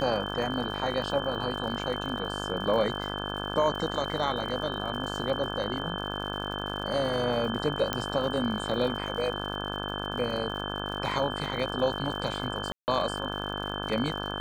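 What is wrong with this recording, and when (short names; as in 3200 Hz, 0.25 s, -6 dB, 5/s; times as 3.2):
buzz 50 Hz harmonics 34 -35 dBFS
crackle 110/s -38 dBFS
tone 3100 Hz -37 dBFS
7.93 pop -11 dBFS
12.72–12.88 gap 0.159 s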